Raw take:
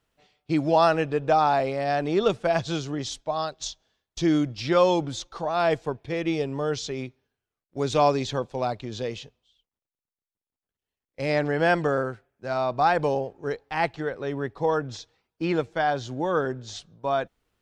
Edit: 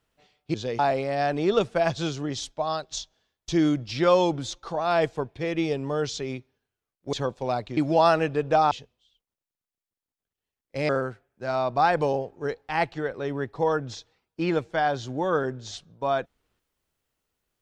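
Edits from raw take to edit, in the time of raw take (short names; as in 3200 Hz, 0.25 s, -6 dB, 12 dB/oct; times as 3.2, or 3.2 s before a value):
0.54–1.48 swap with 8.9–9.15
7.82–8.26 cut
11.33–11.91 cut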